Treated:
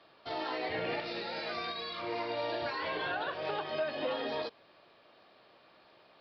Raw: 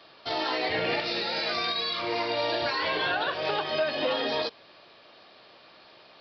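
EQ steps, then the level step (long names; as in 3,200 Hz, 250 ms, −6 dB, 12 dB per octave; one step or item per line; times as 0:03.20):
high-shelf EQ 4,000 Hz −12 dB
−6.0 dB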